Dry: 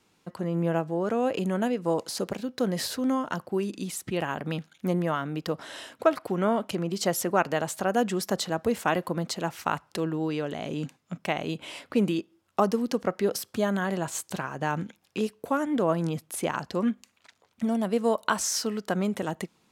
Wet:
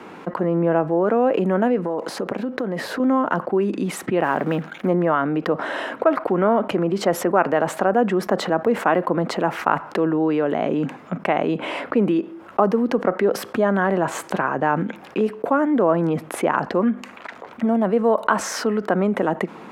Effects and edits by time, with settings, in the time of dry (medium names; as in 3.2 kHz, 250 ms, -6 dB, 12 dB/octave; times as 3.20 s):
1.82–3.00 s: compression, threshold -35 dBFS
4.23–4.87 s: block-companded coder 5-bit
7.85–8.32 s: peaking EQ 12 kHz -4.5 dB 2.8 oct
whole clip: three-band isolator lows -19 dB, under 190 Hz, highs -23 dB, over 2.1 kHz; level flattener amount 50%; trim +4 dB